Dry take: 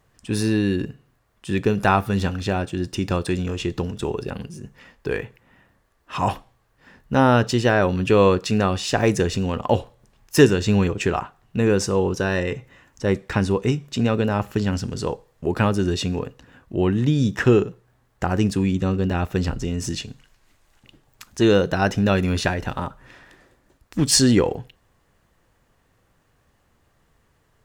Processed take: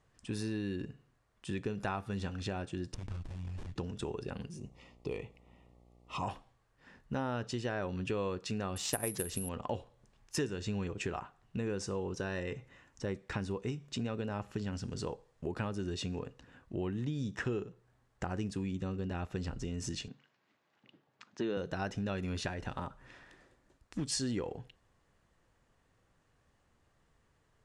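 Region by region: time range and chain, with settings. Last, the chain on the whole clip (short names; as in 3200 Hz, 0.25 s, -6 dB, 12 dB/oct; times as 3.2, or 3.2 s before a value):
2.94–3.76 Chebyshev band-stop 100–2000 Hz + running maximum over 65 samples
4.57–6.22 buzz 60 Hz, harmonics 14, -54 dBFS -5 dB/oct + Butterworth band-stop 1600 Hz, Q 2.1
8.76–9.49 transient shaper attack +8 dB, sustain +1 dB + careless resampling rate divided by 4×, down none, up zero stuff
20.08–21.57 HPF 150 Hz 24 dB/oct + air absorption 170 m
whole clip: LPF 9800 Hz 24 dB/oct; compressor 3:1, threshold -27 dBFS; gain -8.5 dB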